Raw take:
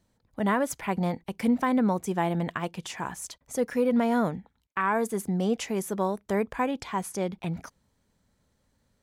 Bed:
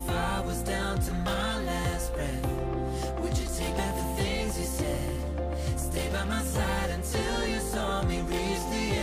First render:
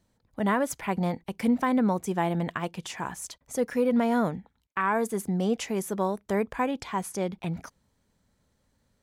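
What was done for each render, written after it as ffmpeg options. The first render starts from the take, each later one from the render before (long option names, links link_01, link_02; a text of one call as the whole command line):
ffmpeg -i in.wav -af anull out.wav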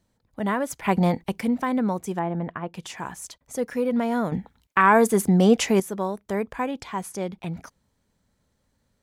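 ffmpeg -i in.wav -filter_complex "[0:a]asplit=3[link_01][link_02][link_03];[link_01]afade=type=out:start_time=0.84:duration=0.02[link_04];[link_02]acontrast=87,afade=type=in:start_time=0.84:duration=0.02,afade=type=out:start_time=1.39:duration=0.02[link_05];[link_03]afade=type=in:start_time=1.39:duration=0.02[link_06];[link_04][link_05][link_06]amix=inputs=3:normalize=0,asettb=1/sr,asplit=3[link_07][link_08][link_09];[link_07]atrim=end=2.194[link_10];[link_08]atrim=start=2.19:end=2.74,asetpts=PTS-STARTPTS,afade=type=in:duration=0.004:curve=qsin,afade=type=out:start_time=0.546:duration=0.004:curve=qsin,lowpass=1600[link_11];[link_09]atrim=start=2.736[link_12];[link_10][link_11]acrossfade=duration=0.004:curve1=hsin:curve2=qsin[link_13];[link_13][link_12]acrossfade=duration=0.004:curve1=qsin:curve2=hsin,asplit=3[link_14][link_15][link_16];[link_14]atrim=end=4.322[link_17];[link_15]atrim=start=4.318:end=5.802,asetpts=PTS-STARTPTS,volume=9.5dB[link_18];[link_16]atrim=start=5.798[link_19];[link_17][link_18]acrossfade=duration=0.004:curve1=hsin:curve2=hsin[link_20];[link_20][link_19]acrossfade=duration=0.004:curve1=hsin:curve2=hsin" out.wav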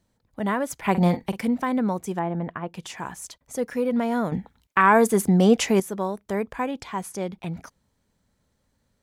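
ffmpeg -i in.wav -filter_complex "[0:a]asettb=1/sr,asplit=3[link_01][link_02][link_03];[link_01]atrim=end=0.904[link_04];[link_02]atrim=start=0.9:end=1.47,asetpts=PTS-STARTPTS,afade=type=in:duration=0.004:curve=qsin,afade=type=out:start_time=0.566:duration=0.004:curve=qsin,asplit=2[link_05][link_06];[link_06]adelay=45,volume=-11.5dB[link_07];[link_05][link_07]amix=inputs=2:normalize=0,atrim=end_sample=25137[link_08];[link_03]atrim=start=1.466[link_09];[link_04][link_08]acrossfade=duration=0.004:curve1=hsin:curve2=qsin[link_10];[link_10][link_09]acrossfade=duration=0.004:curve1=qsin:curve2=hsin" out.wav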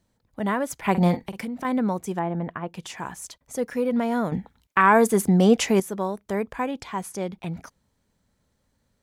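ffmpeg -i in.wav -filter_complex "[0:a]asettb=1/sr,asplit=3[link_01][link_02][link_03];[link_01]atrim=end=1.224[link_04];[link_02]atrim=start=1.22:end=1.65,asetpts=PTS-STARTPTS,afade=type=in:duration=0.004:curve=qsin,afade=type=out:start_time=0.426:duration=0.004:curve=qsin,acompressor=threshold=-28dB:ratio=6:attack=3.2:release=140:knee=1:detection=peak[link_05];[link_03]atrim=start=1.646[link_06];[link_04][link_05]acrossfade=duration=0.004:curve1=hsin:curve2=qsin[link_07];[link_07][link_06]acrossfade=duration=0.004:curve1=qsin:curve2=hsin" out.wav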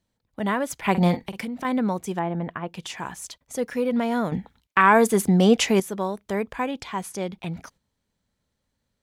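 ffmpeg -i in.wav -af "equalizer=frequency=3300:width=1:gain=4.5,agate=range=-7dB:threshold=-52dB:ratio=16:detection=peak" out.wav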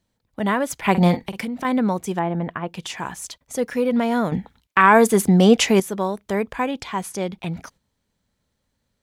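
ffmpeg -i in.wav -af "volume=3.5dB,alimiter=limit=-2dB:level=0:latency=1" out.wav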